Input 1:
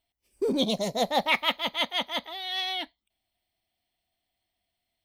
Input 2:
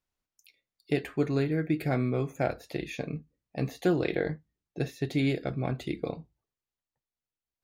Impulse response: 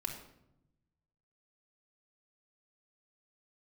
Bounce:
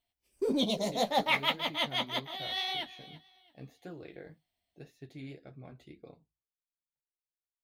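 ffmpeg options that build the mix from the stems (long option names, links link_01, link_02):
-filter_complex "[0:a]volume=0dB,asplit=2[link_01][link_02];[link_02]volume=-17.5dB[link_03];[1:a]volume=-15dB[link_04];[link_03]aecho=0:1:337|674|1011|1348:1|0.26|0.0676|0.0176[link_05];[link_01][link_04][link_05]amix=inputs=3:normalize=0,flanger=delay=6.5:depth=9.5:regen=-27:speed=1.8:shape=triangular"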